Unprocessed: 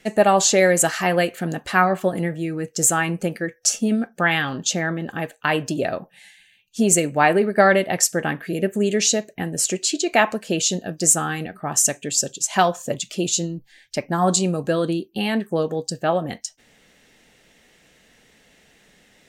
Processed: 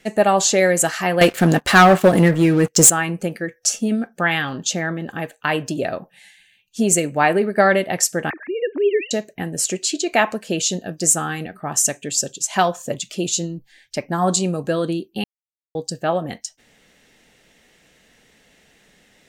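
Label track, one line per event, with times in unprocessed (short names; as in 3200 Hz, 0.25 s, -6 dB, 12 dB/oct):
1.210000	2.900000	sample leveller passes 3
8.300000	9.110000	sine-wave speech
15.240000	15.750000	mute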